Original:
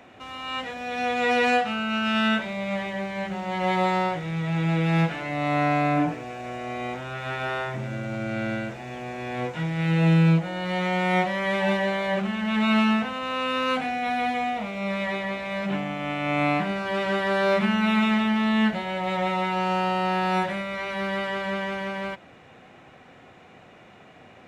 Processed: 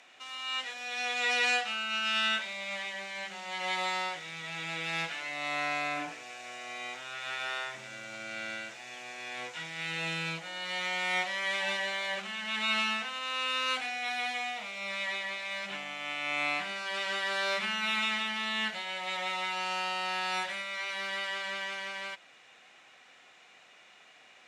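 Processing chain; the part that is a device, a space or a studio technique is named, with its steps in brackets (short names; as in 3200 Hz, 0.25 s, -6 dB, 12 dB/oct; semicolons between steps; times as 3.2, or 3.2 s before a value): piezo pickup straight into a mixer (LPF 6800 Hz 12 dB/oct; differentiator); gain +8 dB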